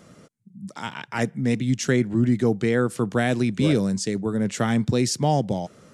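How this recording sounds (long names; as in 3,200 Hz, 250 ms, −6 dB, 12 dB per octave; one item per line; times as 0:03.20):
background noise floor −55 dBFS
spectral slope −6.0 dB per octave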